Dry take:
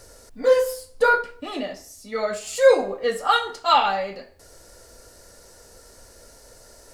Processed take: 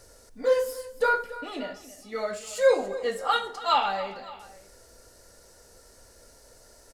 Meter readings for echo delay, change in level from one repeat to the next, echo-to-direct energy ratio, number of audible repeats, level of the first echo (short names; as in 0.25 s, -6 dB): 0.281 s, -5.0 dB, -15.0 dB, 2, -16.0 dB